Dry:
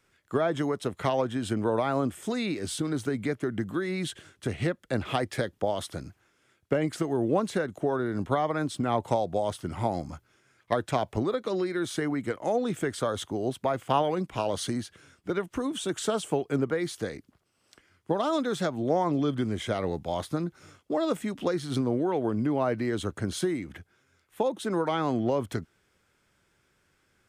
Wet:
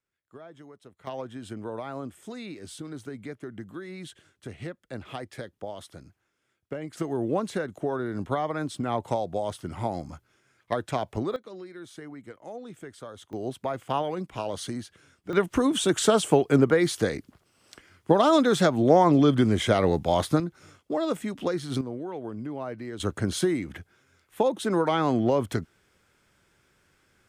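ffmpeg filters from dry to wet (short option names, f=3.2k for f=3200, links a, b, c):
-af "asetnsamples=n=441:p=0,asendcmd='1.07 volume volume -9dB;6.97 volume volume -1.5dB;11.36 volume volume -13dB;13.33 volume volume -3dB;15.33 volume volume 7.5dB;20.4 volume volume 0dB;21.81 volume volume -8dB;23 volume volume 3.5dB',volume=-20dB"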